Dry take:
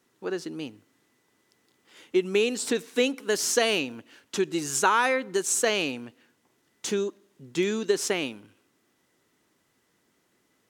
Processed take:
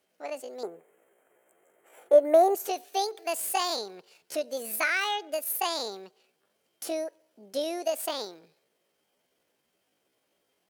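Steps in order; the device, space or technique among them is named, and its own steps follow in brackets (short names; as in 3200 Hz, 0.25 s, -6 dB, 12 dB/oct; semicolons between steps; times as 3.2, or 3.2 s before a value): chipmunk voice (pitch shift +8 st); 0.63–2.55 EQ curve 210 Hz 0 dB, 380 Hz +11 dB, 2100 Hz +8 dB, 5000 Hz -24 dB, 7400 Hz +4 dB; gain -5 dB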